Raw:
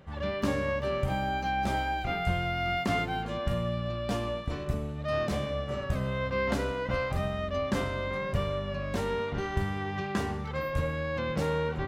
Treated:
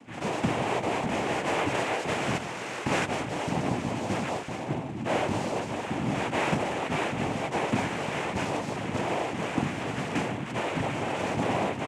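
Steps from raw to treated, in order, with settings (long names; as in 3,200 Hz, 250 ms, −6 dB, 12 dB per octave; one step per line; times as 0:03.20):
downsampling to 8,000 Hz
0:02.37–0:02.85: tube saturation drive 34 dB, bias 0.65
cochlear-implant simulation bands 4
level +2.5 dB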